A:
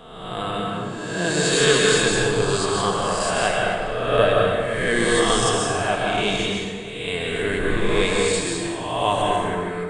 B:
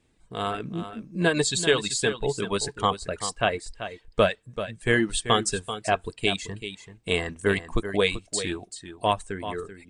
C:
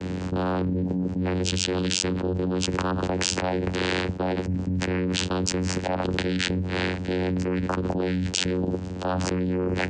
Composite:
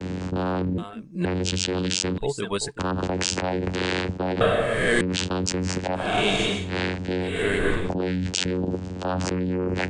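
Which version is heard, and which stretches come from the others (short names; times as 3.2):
C
0.78–1.25 from B
2.18–2.79 from B
4.41–5.01 from A
6.05–6.61 from A, crossfade 0.24 s
7.31–7.8 from A, crossfade 0.24 s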